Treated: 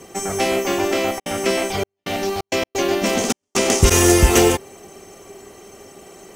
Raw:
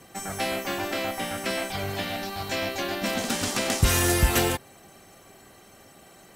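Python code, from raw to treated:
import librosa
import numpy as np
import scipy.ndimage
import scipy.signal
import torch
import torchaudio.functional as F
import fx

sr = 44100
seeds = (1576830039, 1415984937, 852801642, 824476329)

y = fx.graphic_eq_31(x, sr, hz=(125, 400, 1600, 4000, 6300, 12500), db=(-7, 11, -6, -6, 6, -7))
y = fx.step_gate(y, sr, bpm=131, pattern='xxx..xxx.x.xx', floor_db=-60.0, edge_ms=4.5, at=(1.18, 3.9), fade=0.02)
y = y * librosa.db_to_amplitude(7.5)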